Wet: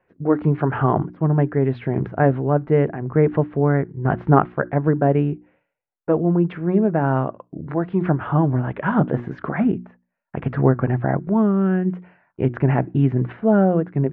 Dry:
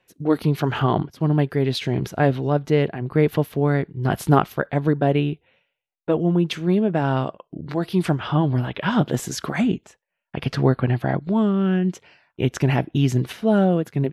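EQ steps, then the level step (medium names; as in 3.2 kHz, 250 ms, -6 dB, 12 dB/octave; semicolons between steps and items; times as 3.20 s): low-pass 1.8 kHz 24 dB/octave; hum notches 60/120/180/240/300/360 Hz; +2.0 dB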